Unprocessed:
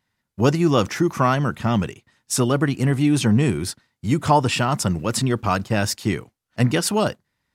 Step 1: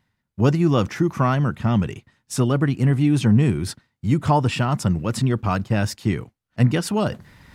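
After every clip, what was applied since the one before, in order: tone controls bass +6 dB, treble -5 dB; reverse; upward compressor, threshold -23 dBFS; reverse; gain -3 dB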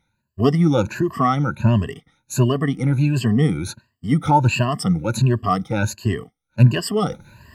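moving spectral ripple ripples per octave 1.4, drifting +1.4 Hz, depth 23 dB; gain -3.5 dB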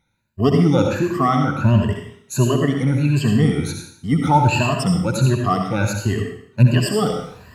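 reverb RT60 0.65 s, pre-delay 61 ms, DRR 2.5 dB

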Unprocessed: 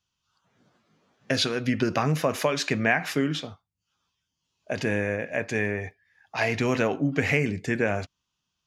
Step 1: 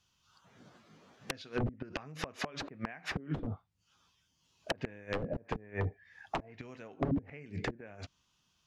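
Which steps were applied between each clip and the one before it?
flipped gate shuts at -15 dBFS, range -31 dB; wrapped overs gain 27 dB; treble ducked by the level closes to 350 Hz, closed at -32 dBFS; gain +6 dB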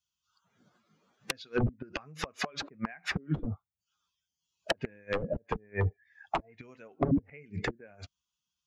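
per-bin expansion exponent 1.5; gain +7 dB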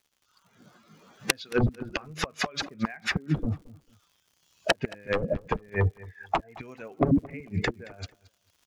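recorder AGC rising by 10 dB/s; crackle 130/s -55 dBFS; feedback echo 0.223 s, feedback 24%, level -20.5 dB; gain +4.5 dB

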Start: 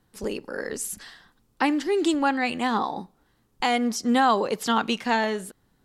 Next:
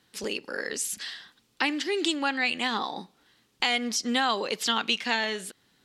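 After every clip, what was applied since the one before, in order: weighting filter D; compressor 1.5:1, threshold -34 dBFS, peak gain reduction 7.5 dB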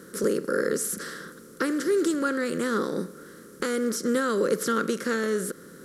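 per-bin compression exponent 0.6; EQ curve 110 Hz 0 dB, 160 Hz +13 dB, 240 Hz +1 dB, 360 Hz +4 dB, 520 Hz +8 dB, 770 Hz -23 dB, 1400 Hz +3 dB, 2600 Hz -23 dB, 5800 Hz -7 dB, 12000 Hz +4 dB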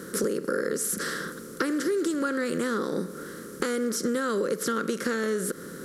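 compressor, threshold -31 dBFS, peak gain reduction 11.5 dB; gain +6.5 dB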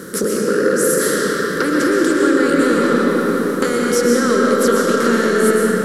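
reverb RT60 5.3 s, pre-delay 85 ms, DRR -4.5 dB; gain +7.5 dB

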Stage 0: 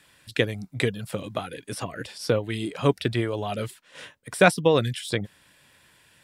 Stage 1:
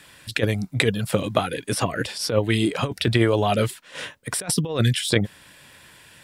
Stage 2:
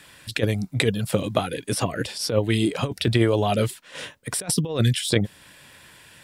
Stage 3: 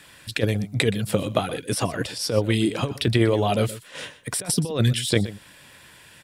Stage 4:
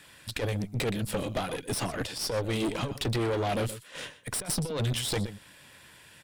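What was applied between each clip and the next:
negative-ratio compressor -24 dBFS, ratio -0.5; gain +6 dB
dynamic EQ 1500 Hz, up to -4 dB, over -39 dBFS, Q 0.75
echo 0.123 s -16 dB
tube stage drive 25 dB, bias 0.75

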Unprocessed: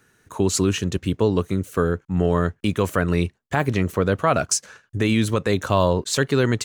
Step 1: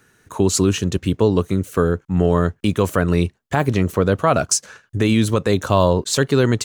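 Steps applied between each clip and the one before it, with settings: dynamic EQ 2000 Hz, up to -4 dB, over -38 dBFS, Q 1.3; gain +3.5 dB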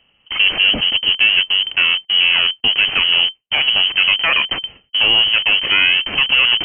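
minimum comb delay 0.31 ms; in parallel at -5.5 dB: Schmitt trigger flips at -32 dBFS; on the sum: inverted band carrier 3100 Hz; gain +1 dB

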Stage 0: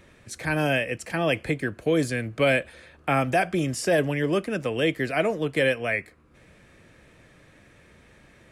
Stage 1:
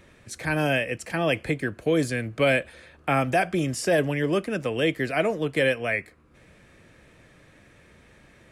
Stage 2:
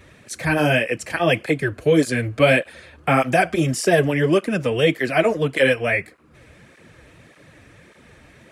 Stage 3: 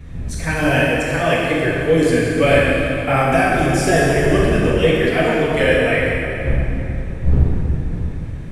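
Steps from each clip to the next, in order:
nothing audible
tape flanging out of phase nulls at 1.7 Hz, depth 6.2 ms; gain +8.5 dB
wind noise 96 Hz -25 dBFS; plate-style reverb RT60 3.1 s, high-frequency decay 0.75×, DRR -5.5 dB; gain -3.5 dB

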